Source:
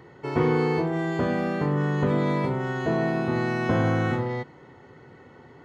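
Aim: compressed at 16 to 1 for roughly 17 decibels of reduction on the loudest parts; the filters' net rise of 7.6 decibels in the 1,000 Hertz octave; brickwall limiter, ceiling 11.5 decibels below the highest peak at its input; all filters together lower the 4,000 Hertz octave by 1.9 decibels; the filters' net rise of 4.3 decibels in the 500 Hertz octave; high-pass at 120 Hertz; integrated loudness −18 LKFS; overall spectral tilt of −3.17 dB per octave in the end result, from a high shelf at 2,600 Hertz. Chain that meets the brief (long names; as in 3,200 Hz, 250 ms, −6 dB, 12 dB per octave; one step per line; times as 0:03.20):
high-pass filter 120 Hz
parametric band 500 Hz +3.5 dB
parametric band 1,000 Hz +8 dB
high-shelf EQ 2,600 Hz +4.5 dB
parametric band 4,000 Hz −7 dB
downward compressor 16 to 1, threshold −32 dBFS
level +23.5 dB
brickwall limiter −9.5 dBFS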